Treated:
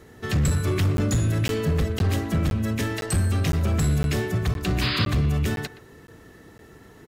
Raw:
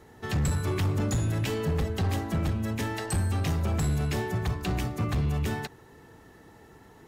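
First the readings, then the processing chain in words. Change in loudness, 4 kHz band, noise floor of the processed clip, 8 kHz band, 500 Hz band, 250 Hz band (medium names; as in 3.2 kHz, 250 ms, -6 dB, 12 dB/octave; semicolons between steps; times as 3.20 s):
+5.0 dB, +8.0 dB, -49 dBFS, +5.0 dB, +4.0 dB, +5.0 dB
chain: peaking EQ 860 Hz -9 dB 0.42 oct; painted sound noise, 4.81–5.06 s, 940–5100 Hz -32 dBFS; speakerphone echo 120 ms, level -15 dB; crackling interface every 0.51 s, samples 512, zero, from 0.97 s; trim +5 dB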